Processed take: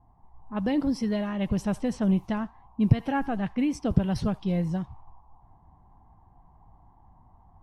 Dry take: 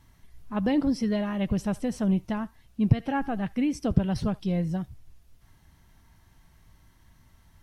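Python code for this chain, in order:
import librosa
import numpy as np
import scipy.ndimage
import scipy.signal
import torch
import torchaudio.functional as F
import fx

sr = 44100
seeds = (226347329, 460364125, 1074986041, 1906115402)

y = fx.dmg_noise_band(x, sr, seeds[0], low_hz=720.0, high_hz=1100.0, level_db=-58.0)
y = fx.env_lowpass(y, sr, base_hz=570.0, full_db=-23.0)
y = fx.rider(y, sr, range_db=10, speed_s=2.0)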